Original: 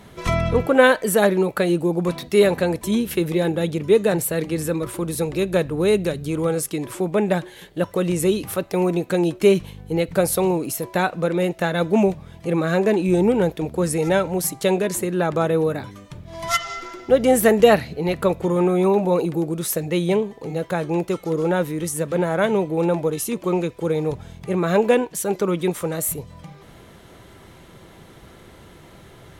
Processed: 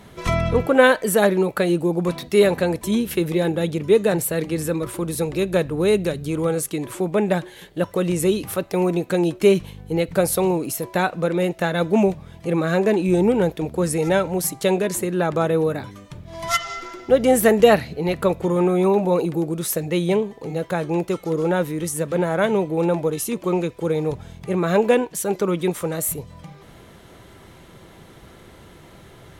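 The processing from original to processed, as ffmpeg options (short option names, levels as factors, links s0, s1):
-filter_complex "[0:a]asettb=1/sr,asplit=3[s0][s1][s2];[s0]atrim=end=6.454[s3];[s1]atrim=start=6.45:end=6.97,asetpts=PTS-STARTPTS,afade=t=in:d=0.004:c=qsin,afade=t=out:st=0.516:d=0.004:c=qsin,bandreject=f=5200:w=12[s4];[s2]atrim=start=6.966[s5];[s3][s4]acrossfade=d=0.004:c1=hsin:c2=qsin[s6];[s6][s5]acrossfade=d=0.004:c1=qsin:c2=hsin"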